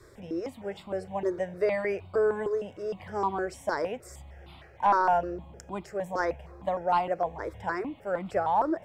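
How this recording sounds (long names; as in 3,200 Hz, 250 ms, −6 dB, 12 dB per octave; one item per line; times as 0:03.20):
notches that jump at a steady rate 6.5 Hz 770–1,700 Hz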